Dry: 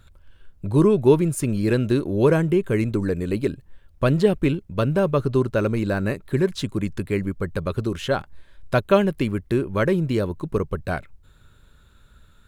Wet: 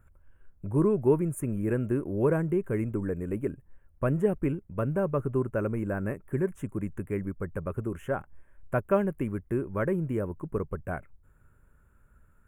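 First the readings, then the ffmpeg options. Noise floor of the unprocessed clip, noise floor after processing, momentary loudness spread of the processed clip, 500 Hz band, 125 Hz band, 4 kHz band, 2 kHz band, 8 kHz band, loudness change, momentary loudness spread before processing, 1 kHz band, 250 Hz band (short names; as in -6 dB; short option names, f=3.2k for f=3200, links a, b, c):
-54 dBFS, -61 dBFS, 9 LU, -7.5 dB, -7.5 dB, under -25 dB, -9.5 dB, under -10 dB, -7.5 dB, 9 LU, -8.0 dB, -7.5 dB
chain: -af "asuperstop=centerf=4300:order=4:qfactor=0.62,volume=-7.5dB"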